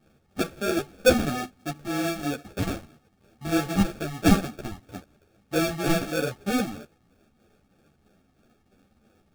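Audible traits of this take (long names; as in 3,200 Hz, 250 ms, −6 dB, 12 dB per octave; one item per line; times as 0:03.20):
phaser sweep stages 12, 3.1 Hz, lowest notch 460–3,600 Hz
aliases and images of a low sample rate 1,000 Hz, jitter 0%
a shimmering, thickened sound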